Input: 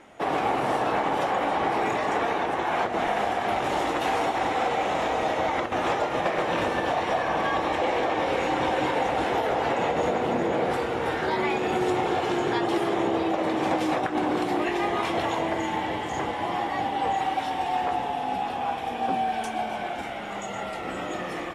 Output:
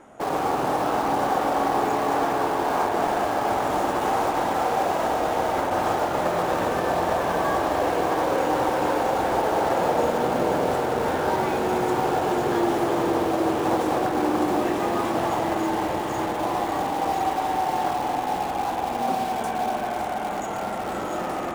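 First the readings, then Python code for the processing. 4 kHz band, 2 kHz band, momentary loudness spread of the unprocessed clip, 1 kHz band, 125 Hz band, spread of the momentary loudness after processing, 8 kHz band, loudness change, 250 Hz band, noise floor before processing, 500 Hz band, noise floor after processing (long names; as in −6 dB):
−1.5 dB, −1.5 dB, 4 LU, +2.5 dB, +2.5 dB, 4 LU, +5.5 dB, +2.0 dB, +2.5 dB, −33 dBFS, +2.5 dB, −28 dBFS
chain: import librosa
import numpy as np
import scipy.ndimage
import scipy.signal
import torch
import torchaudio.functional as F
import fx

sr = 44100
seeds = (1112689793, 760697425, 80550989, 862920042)

p1 = fx.band_shelf(x, sr, hz=3100.0, db=-9.0, octaves=1.7)
p2 = fx.echo_diffused(p1, sr, ms=624, feedback_pct=79, wet_db=-10.0)
p3 = (np.mod(10.0 ** (26.0 / 20.0) * p2 + 1.0, 2.0) - 1.0) / 10.0 ** (26.0 / 20.0)
p4 = p2 + (p3 * 10.0 ** (-10.5 / 20.0))
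y = fx.rev_spring(p4, sr, rt60_s=3.8, pass_ms=(46,), chirp_ms=25, drr_db=4.0)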